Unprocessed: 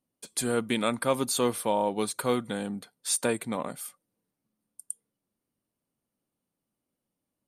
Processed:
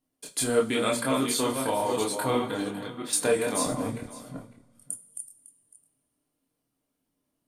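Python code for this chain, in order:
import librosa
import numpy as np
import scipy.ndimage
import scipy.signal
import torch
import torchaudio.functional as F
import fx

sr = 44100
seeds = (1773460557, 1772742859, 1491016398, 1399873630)

p1 = fx.reverse_delay(x, sr, ms=336, wet_db=-5.5)
p2 = fx.riaa(p1, sr, side='playback', at=(3.66, 4.83))
p3 = fx.rider(p2, sr, range_db=10, speed_s=2.0)
p4 = p2 + F.gain(torch.from_numpy(p3), 2.0).numpy()
p5 = fx.chorus_voices(p4, sr, voices=6, hz=0.8, base_ms=26, depth_ms=4.7, mix_pct=45)
p6 = 10.0 ** (-6.0 / 20.0) * np.tanh(p5 / 10.0 ** (-6.0 / 20.0))
p7 = fx.band_shelf(p6, sr, hz=7600.0, db=-13.0, octaves=1.7, at=(2.3, 3.13))
p8 = p7 + fx.echo_single(p7, sr, ms=554, db=-17.5, dry=0)
p9 = fx.rev_double_slope(p8, sr, seeds[0], early_s=0.21, late_s=1.6, knee_db=-18, drr_db=5.5)
y = F.gain(torch.from_numpy(p9), -4.0).numpy()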